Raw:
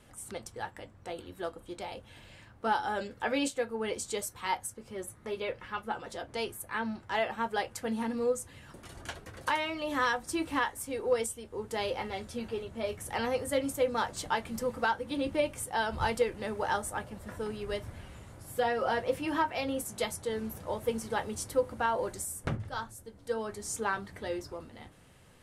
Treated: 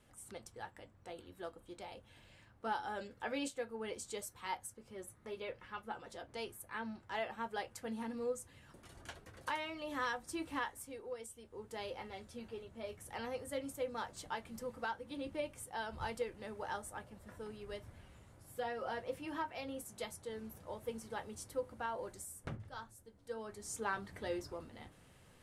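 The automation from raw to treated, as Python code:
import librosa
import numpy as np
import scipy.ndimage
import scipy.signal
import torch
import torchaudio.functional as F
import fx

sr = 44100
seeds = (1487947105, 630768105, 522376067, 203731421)

y = fx.gain(x, sr, db=fx.line((10.77, -9.0), (11.18, -18.0), (11.4, -11.0), (23.31, -11.0), (24.17, -4.0)))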